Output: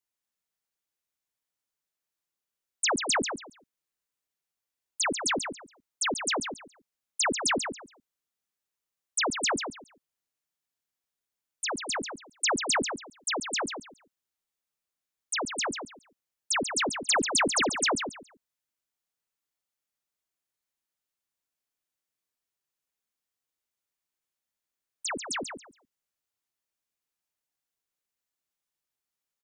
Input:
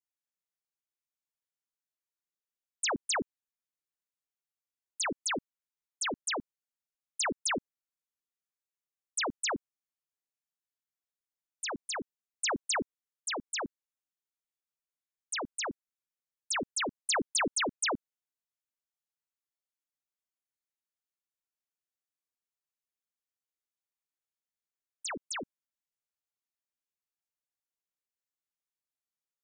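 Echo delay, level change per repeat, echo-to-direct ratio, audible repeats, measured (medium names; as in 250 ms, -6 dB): 139 ms, -13.5 dB, -7.5 dB, 3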